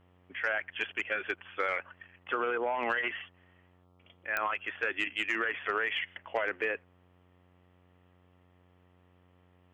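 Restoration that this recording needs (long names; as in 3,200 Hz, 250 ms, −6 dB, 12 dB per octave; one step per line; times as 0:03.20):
click removal
hum removal 90 Hz, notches 15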